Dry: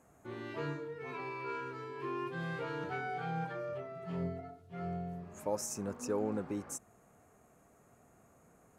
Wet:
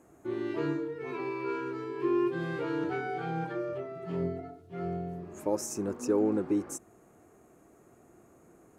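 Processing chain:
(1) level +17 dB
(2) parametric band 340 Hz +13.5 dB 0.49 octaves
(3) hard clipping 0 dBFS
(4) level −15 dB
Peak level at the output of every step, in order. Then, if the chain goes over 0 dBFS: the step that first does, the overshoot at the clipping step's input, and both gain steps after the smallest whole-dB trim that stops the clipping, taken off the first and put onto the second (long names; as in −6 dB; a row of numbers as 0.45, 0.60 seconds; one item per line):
−5.5, −1.5, −1.5, −16.5 dBFS
no step passes full scale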